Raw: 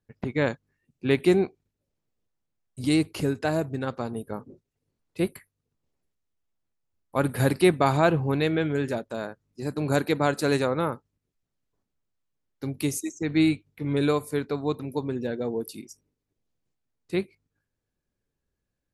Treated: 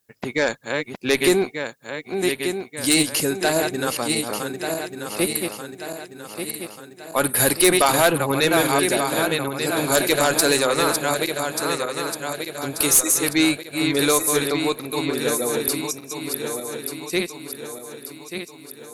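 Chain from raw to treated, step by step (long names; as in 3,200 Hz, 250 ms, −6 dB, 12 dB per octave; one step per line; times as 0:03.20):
feedback delay that plays each chunk backwards 593 ms, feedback 69%, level −6 dB
RIAA equalisation recording
harmonic generator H 4 −17 dB, 5 −11 dB, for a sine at −5 dBFS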